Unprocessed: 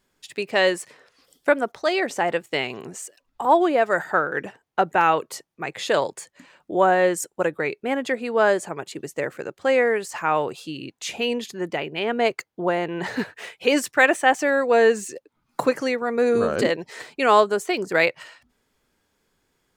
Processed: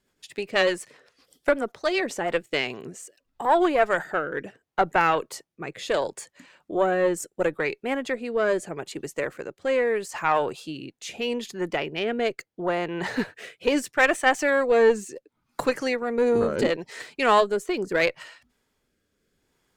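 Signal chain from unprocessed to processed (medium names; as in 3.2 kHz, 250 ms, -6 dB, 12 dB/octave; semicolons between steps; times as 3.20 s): rotary cabinet horn 8 Hz, later 0.75 Hz, at 1.84 s; Chebyshev shaper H 4 -20 dB, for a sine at -6 dBFS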